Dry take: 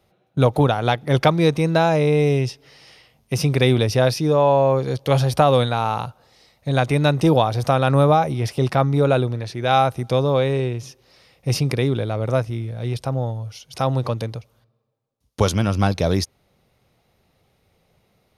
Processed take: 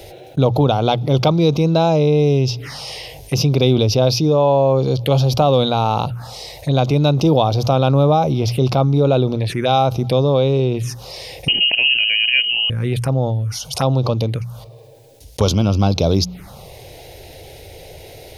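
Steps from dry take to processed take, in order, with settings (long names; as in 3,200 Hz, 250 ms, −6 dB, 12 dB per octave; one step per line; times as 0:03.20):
mains-hum notches 60/120/180 Hz
phaser swept by the level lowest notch 200 Hz, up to 1,800 Hz, full sweep at −20.5 dBFS
0:11.48–0:12.70: voice inversion scrambler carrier 3,000 Hz
envelope flattener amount 50%
level +1.5 dB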